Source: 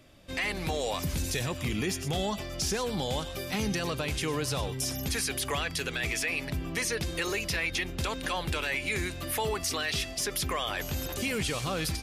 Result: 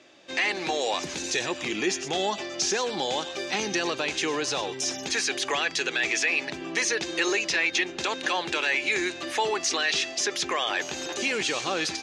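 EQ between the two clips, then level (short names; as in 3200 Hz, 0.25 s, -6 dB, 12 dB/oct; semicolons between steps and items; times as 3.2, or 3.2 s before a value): speaker cabinet 320–7200 Hz, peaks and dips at 350 Hz +8 dB, 820 Hz +5 dB, 1700 Hz +5 dB, 2600 Hz +4 dB, 3900 Hz +4 dB, 6400 Hz +7 dB; +2.5 dB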